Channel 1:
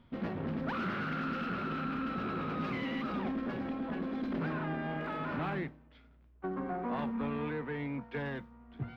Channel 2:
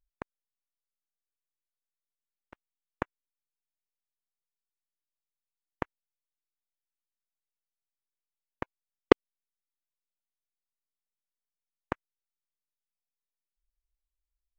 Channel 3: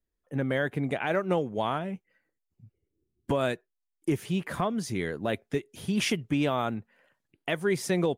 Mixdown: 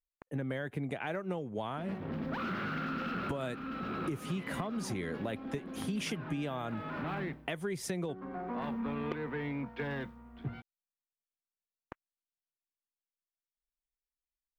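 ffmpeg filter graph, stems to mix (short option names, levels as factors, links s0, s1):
-filter_complex "[0:a]highshelf=f=6400:g=6.5,adelay=1650,volume=1.33[s0];[1:a]volume=0.188[s1];[2:a]acrossover=split=220[s2][s3];[s3]acompressor=threshold=0.02:ratio=1.5[s4];[s2][s4]amix=inputs=2:normalize=0,agate=range=0.0224:threshold=0.00141:ratio=3:detection=peak,volume=0.891,asplit=2[s5][s6];[s6]apad=whole_len=468329[s7];[s0][s7]sidechaincompress=threshold=0.0224:ratio=8:attack=5.9:release=996[s8];[s8][s1][s5]amix=inputs=3:normalize=0,acompressor=threshold=0.0224:ratio=4"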